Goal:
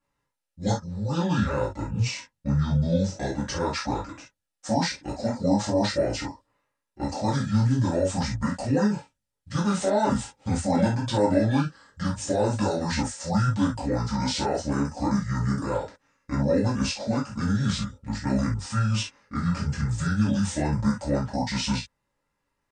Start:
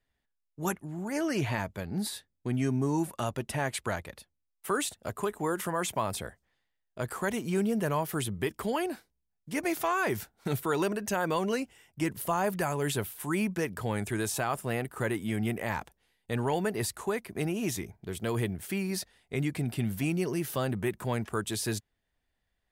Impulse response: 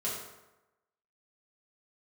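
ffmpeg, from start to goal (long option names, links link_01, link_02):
-filter_complex "[0:a]asplit=2[link_01][link_02];[link_02]alimiter=limit=-22.5dB:level=0:latency=1:release=23,volume=-2dB[link_03];[link_01][link_03]amix=inputs=2:normalize=0,asetrate=25476,aresample=44100,atempo=1.73107[link_04];[1:a]atrim=start_sample=2205,atrim=end_sample=4410,asetrate=57330,aresample=44100[link_05];[link_04][link_05]afir=irnorm=-1:irlink=0"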